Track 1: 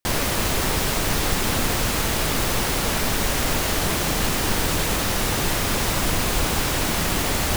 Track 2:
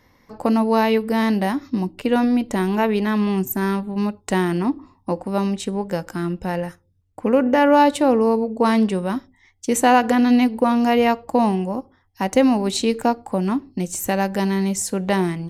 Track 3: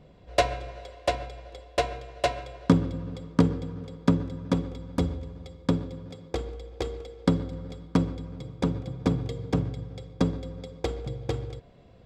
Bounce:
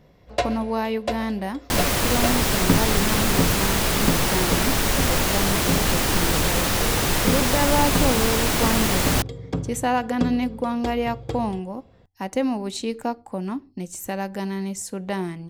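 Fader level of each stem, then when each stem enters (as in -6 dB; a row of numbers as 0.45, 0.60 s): +1.0, -7.5, -1.0 dB; 1.65, 0.00, 0.00 s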